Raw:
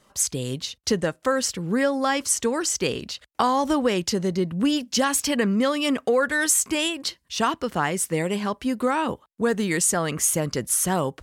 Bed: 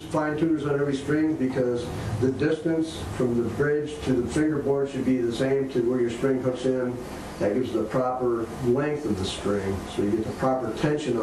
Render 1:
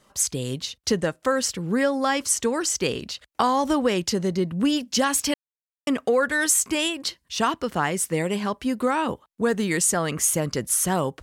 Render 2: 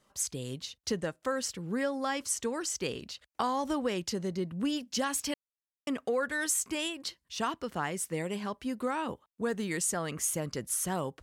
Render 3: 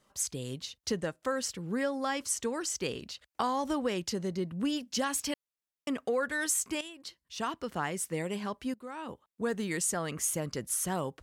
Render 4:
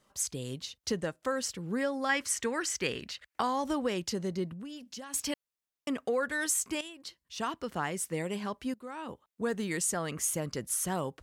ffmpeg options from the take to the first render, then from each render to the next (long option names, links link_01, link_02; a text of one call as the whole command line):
ffmpeg -i in.wav -filter_complex "[0:a]asplit=3[link_01][link_02][link_03];[link_01]atrim=end=5.34,asetpts=PTS-STARTPTS,afade=type=out:start_time=5.336:duration=0.004:curve=hsin[link_04];[link_02]atrim=start=5.34:end=5.87,asetpts=PTS-STARTPTS,volume=0[link_05];[link_03]atrim=start=5.87,asetpts=PTS-STARTPTS,afade=type=in:duration=0.004:curve=hsin[link_06];[link_04][link_05][link_06]concat=n=3:v=0:a=1" out.wav
ffmpeg -i in.wav -af "volume=-9.5dB" out.wav
ffmpeg -i in.wav -filter_complex "[0:a]asplit=3[link_01][link_02][link_03];[link_01]atrim=end=6.81,asetpts=PTS-STARTPTS,afade=type=out:start_time=6.806:duration=0.004:curve=hsin:silence=0.237137[link_04];[link_02]atrim=start=6.81:end=8.74,asetpts=PTS-STARTPTS,afade=type=in:duration=0.88:silence=0.237137,afade=type=out:start_time=1.926:duration=0.004:curve=hsin:silence=0.11885[link_05];[link_03]atrim=start=8.74,asetpts=PTS-STARTPTS,afade=type=in:duration=0.72:silence=0.11885[link_06];[link_04][link_05][link_06]concat=n=3:v=0:a=1" out.wav
ffmpeg -i in.wav -filter_complex "[0:a]asettb=1/sr,asplit=3[link_01][link_02][link_03];[link_01]atrim=end=2.094[link_04];[link_02]atrim=start=2.09:end=3.4,asetpts=PTS-STARTPTS,afade=type=in:duration=0.004:curve=qsin,afade=type=out:start_time=1.306:duration=0.004:curve=qsin,equalizer=frequency=1900:width=1.4:gain=10[link_05];[link_03]atrim=start=3.396[link_06];[link_04][link_05]acrossfade=duration=0.004:curve1=hsin:curve2=qsin[link_07];[link_07][link_06]acrossfade=duration=0.004:curve1=qsin:curve2=hsin,asettb=1/sr,asplit=3[link_08][link_09][link_10];[link_08]atrim=end=4.534[link_11];[link_09]atrim=start=4.53:end=5.14,asetpts=PTS-STARTPTS,afade=type=in:duration=0.004:curve=qsin,afade=type=out:start_time=0.606:duration=0.004:curve=qsin,acompressor=threshold=-42dB:ratio=4:attack=3.2:release=140:knee=1:detection=peak[link_12];[link_10]atrim=start=5.136[link_13];[link_11][link_12]acrossfade=duration=0.004:curve1=hsin:curve2=qsin[link_14];[link_14][link_13]acrossfade=duration=0.004:curve1=qsin:curve2=hsin" out.wav